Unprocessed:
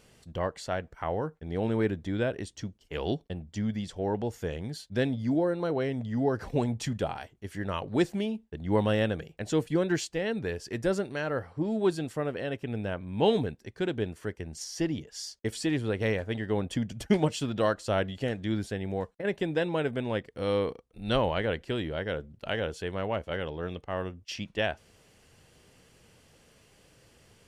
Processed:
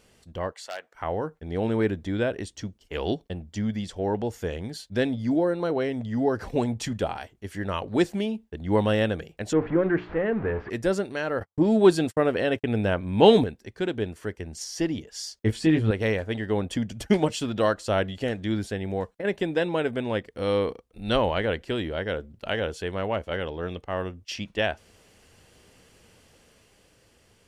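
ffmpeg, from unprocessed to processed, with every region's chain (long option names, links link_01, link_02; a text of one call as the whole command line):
ffmpeg -i in.wav -filter_complex "[0:a]asettb=1/sr,asplit=3[link_01][link_02][link_03];[link_01]atrim=end=0.534[link_04];[link_02]atrim=start=0.53:end=0.95,asetpts=PTS-STARTPTS,afade=type=in:duration=0.004:curve=qsin,afade=type=out:start_time=0.416:duration=0.004:curve=qsin,aeval=exprs='0.0596*(abs(mod(val(0)/0.0596+3,4)-2)-1)':channel_layout=same,highpass=750[link_05];[link_03]atrim=start=0.946[link_06];[link_04][link_05]acrossfade=duration=0.004:curve1=hsin:curve2=qsin[link_07];[link_07][link_06]acrossfade=duration=0.004:curve1=qsin:curve2=hsin,asettb=1/sr,asplit=3[link_08][link_09][link_10];[link_08]atrim=end=9.534[link_11];[link_09]atrim=start=9.53:end=10.7,asetpts=PTS-STARTPTS,afade=type=in:duration=0.004:curve=qsin,afade=type=out:start_time=1.166:duration=0.004:curve=qsin,aeval=exprs='val(0)+0.5*0.0251*sgn(val(0))':channel_layout=same,lowpass=frequency=1900:width=0.5412,lowpass=frequency=1900:width=1.3066,bandreject=frequency=60:width_type=h:width=6,bandreject=frequency=120:width_type=h:width=6,bandreject=frequency=180:width_type=h:width=6,bandreject=frequency=240:width_type=h:width=6,bandreject=frequency=300:width_type=h:width=6,bandreject=frequency=360:width_type=h:width=6,bandreject=frequency=420:width_type=h:width=6[link_12];[link_10]atrim=start=10.696[link_13];[link_11][link_12]acrossfade=duration=0.004:curve1=hsin:curve2=qsin[link_14];[link_14][link_13]acrossfade=duration=0.004:curve1=qsin:curve2=hsin,asettb=1/sr,asplit=3[link_15][link_16][link_17];[link_15]atrim=end=11.404[link_18];[link_16]atrim=start=11.4:end=13.44,asetpts=PTS-STARTPTS,afade=type=in:duration=0.004:curve=qsin,afade=type=out:start_time=2.036:duration=0.004:curve=qsin,agate=range=-55dB:threshold=-42dB:ratio=16:release=100:detection=peak,acontrast=62[link_19];[link_17]atrim=start=13.436[link_20];[link_18][link_19]acrossfade=duration=0.004:curve1=hsin:curve2=qsin[link_21];[link_21][link_20]acrossfade=duration=0.004:curve1=qsin:curve2=hsin,asettb=1/sr,asplit=3[link_22][link_23][link_24];[link_22]atrim=end=15.434[link_25];[link_23]atrim=start=15.43:end=15.91,asetpts=PTS-STARTPTS,afade=type=in:duration=0.004:curve=qsin,afade=type=out:start_time=0.476:duration=0.004:curve=qsin,bass=frequency=250:gain=7,treble=frequency=4000:gain=-8,asplit=2[link_26][link_27];[link_27]adelay=19,volume=-4dB[link_28];[link_26][link_28]amix=inputs=2:normalize=0,atrim=end_sample=21168[link_29];[link_24]atrim=start=15.906[link_30];[link_25][link_29]acrossfade=duration=0.004:curve1=hsin:curve2=qsin[link_31];[link_31][link_30]acrossfade=duration=0.004:curve1=qsin:curve2=hsin,equalizer=frequency=140:width=4.7:gain=-8.5,dynaudnorm=framelen=120:gausssize=17:maxgain=3.5dB" out.wav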